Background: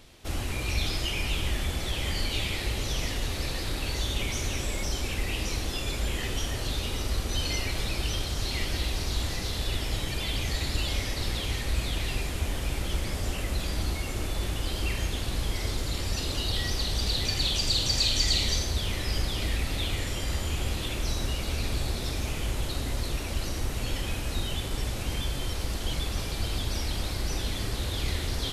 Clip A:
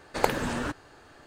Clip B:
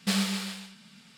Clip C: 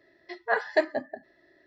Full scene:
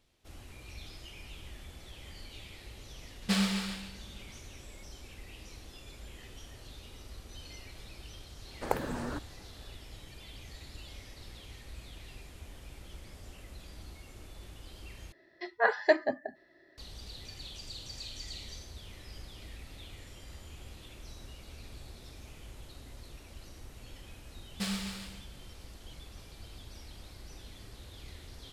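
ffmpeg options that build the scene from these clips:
-filter_complex "[2:a]asplit=2[s0][s1];[0:a]volume=0.119[s2];[s0]highshelf=f=5400:g=-6[s3];[1:a]equalizer=f=3800:w=0.65:g=-10.5[s4];[s2]asplit=2[s5][s6];[s5]atrim=end=15.124[s7];[3:a]atrim=end=1.66,asetpts=PTS-STARTPTS,volume=0.944[s8];[s6]atrim=start=16.776[s9];[s3]atrim=end=1.17,asetpts=PTS-STARTPTS,volume=0.891,afade=t=in:d=0.004:c=hsin,afade=t=out:st=1.166:d=0.004:c=hsin,adelay=3220[s10];[s4]atrim=end=1.26,asetpts=PTS-STARTPTS,volume=0.531,afade=t=in:d=0.004:c=hsin,afade=t=out:st=1.256:d=0.004:c=hsin,adelay=8470[s11];[s1]atrim=end=1.17,asetpts=PTS-STARTPTS,volume=0.398,afade=t=in:d=0.004:c=hsin,afade=t=out:st=1.166:d=0.004:c=hsin,adelay=24530[s12];[s7][s8]acrossfade=d=0.004:c1=hsin:c2=hsin[s13];[s13][s9]acrossfade=d=0.004:c1=hsin:c2=hsin[s14];[s14][s10][s11][s12]amix=inputs=4:normalize=0"

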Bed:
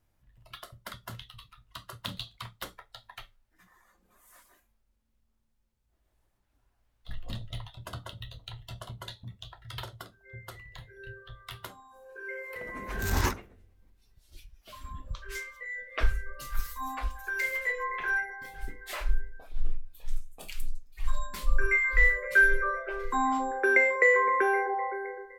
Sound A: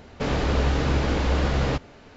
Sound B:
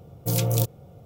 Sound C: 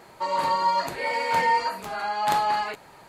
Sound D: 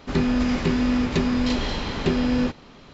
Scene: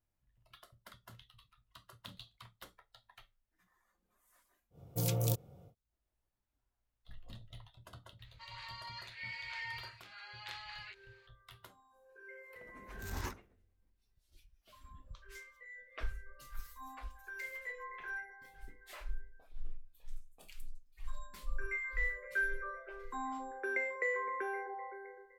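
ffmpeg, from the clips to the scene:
-filter_complex "[0:a]volume=0.211[s0];[3:a]asuperpass=centerf=3000:order=4:qfactor=0.99[s1];[2:a]atrim=end=1.05,asetpts=PTS-STARTPTS,volume=0.335,afade=t=in:d=0.1,afade=t=out:st=0.95:d=0.1,adelay=4700[s2];[s1]atrim=end=3.08,asetpts=PTS-STARTPTS,volume=0.266,afade=t=in:d=0.004:c=hsin,afade=t=out:st=3.076:d=0.004:c=hsin,adelay=8190[s3];[s0][s2][s3]amix=inputs=3:normalize=0"

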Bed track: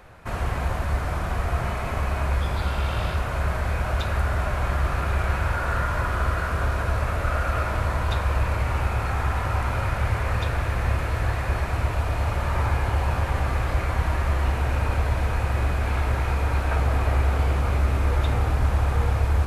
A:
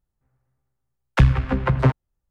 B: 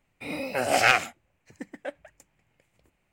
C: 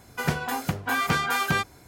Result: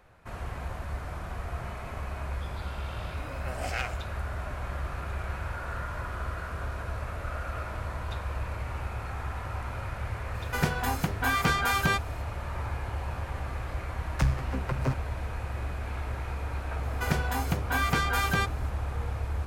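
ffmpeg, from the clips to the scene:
-filter_complex "[3:a]asplit=2[s0][s1];[0:a]volume=0.299[s2];[1:a]aexciter=amount=2.5:drive=9.2:freq=4700[s3];[2:a]atrim=end=3.12,asetpts=PTS-STARTPTS,volume=0.2,afade=t=in:d=0.004:c=hsin,afade=t=out:st=3.116:d=0.004:c=hsin,adelay=2900[s4];[s0]atrim=end=1.87,asetpts=PTS-STARTPTS,volume=0.841,afade=t=in:d=0.004:c=hsin,afade=t=out:st=1.866:d=0.004:c=hsin,adelay=10350[s5];[s3]atrim=end=2.3,asetpts=PTS-STARTPTS,volume=0.251,afade=t=in:d=0.004:c=hsin,afade=t=out:st=2.296:d=0.004:c=hsin,adelay=13020[s6];[s1]atrim=end=1.87,asetpts=PTS-STARTPTS,volume=0.708,afade=t=in:d=0.004:c=hsin,afade=t=out:st=1.866:d=0.004:c=hsin,adelay=16830[s7];[s2][s4][s5][s6][s7]amix=inputs=5:normalize=0"

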